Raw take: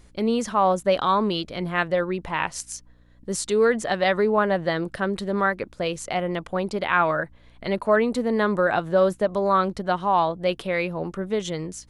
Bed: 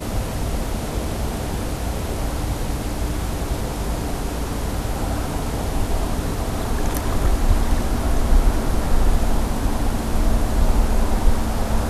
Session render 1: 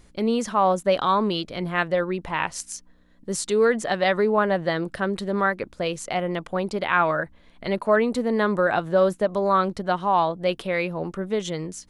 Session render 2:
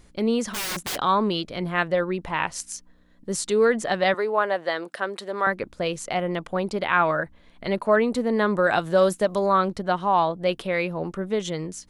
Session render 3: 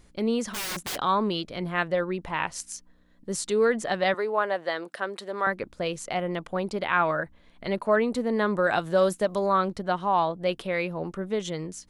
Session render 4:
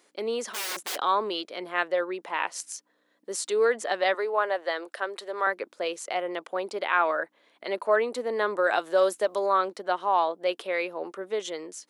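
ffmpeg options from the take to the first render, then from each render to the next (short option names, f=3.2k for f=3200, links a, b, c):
-af "bandreject=f=60:t=h:w=4,bandreject=f=120:t=h:w=4"
-filter_complex "[0:a]asplit=3[a][b][c];[a]afade=t=out:st=0.53:d=0.02[d];[b]aeval=exprs='(mod(15.8*val(0)+1,2)-1)/15.8':c=same,afade=t=in:st=0.53:d=0.02,afade=t=out:st=0.95:d=0.02[e];[c]afade=t=in:st=0.95:d=0.02[f];[d][e][f]amix=inputs=3:normalize=0,asettb=1/sr,asplit=3[g][h][i];[g]atrim=end=4.144[j];[h]atrim=start=4.14:end=5.47,asetpts=PTS-STARTPTS,afade=t=in:d=0.004:c=qsin,afade=t=out:st=1.326:d=0.004:c=qsin,highpass=470[k];[i]atrim=start=5.466[l];[j][k]acrossfade=d=0.004:c1=hsin:c2=qsin[m];[m][l]acrossfade=d=0.004:c1=qsin:c2=hsin,asettb=1/sr,asplit=3[n][o][p];[n]atrim=end=8.644[q];[o]atrim=start=8.64:end=9.46,asetpts=PTS-STARTPTS,afade=t=in:d=0.004:c=qsin,afade=t=out:st=0.816:d=0.004:c=qsin,highshelf=f=3.4k:g=11[r];[p]atrim=start=9.456[s];[q][r]acrossfade=d=0.004:c1=hsin:c2=qsin[t];[t][s]acrossfade=d=0.004:c1=qsin:c2=hsin"
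-af "volume=-3dB"
-af "highpass=f=340:w=0.5412,highpass=f=340:w=1.3066"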